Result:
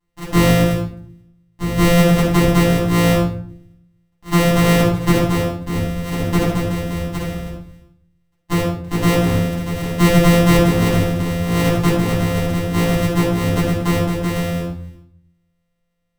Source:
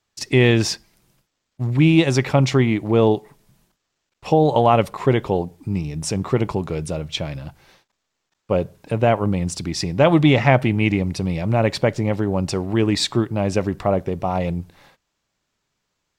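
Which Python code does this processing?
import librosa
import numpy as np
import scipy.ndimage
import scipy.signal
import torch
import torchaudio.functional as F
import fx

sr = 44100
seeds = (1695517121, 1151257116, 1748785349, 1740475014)

y = np.r_[np.sort(x[:len(x) // 256 * 256].reshape(-1, 256), axis=1).ravel(), x[len(x) // 256 * 256:]]
y = fx.room_shoebox(y, sr, seeds[0], volume_m3=810.0, walls='furnished', distance_m=9.7)
y = F.gain(torch.from_numpy(y), -9.5).numpy()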